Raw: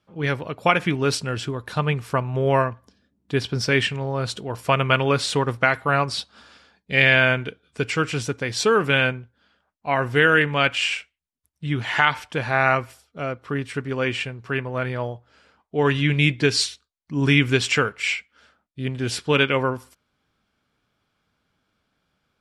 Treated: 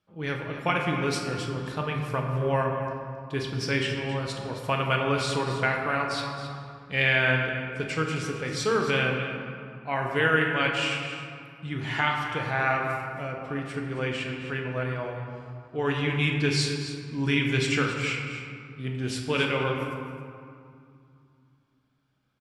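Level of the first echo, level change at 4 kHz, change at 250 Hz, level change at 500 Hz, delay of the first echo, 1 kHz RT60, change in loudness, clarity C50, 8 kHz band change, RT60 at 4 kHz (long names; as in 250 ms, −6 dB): −12.5 dB, −6.0 dB, −4.5 dB, −5.5 dB, 268 ms, 2.5 s, −5.5 dB, 2.5 dB, −6.5 dB, 1.2 s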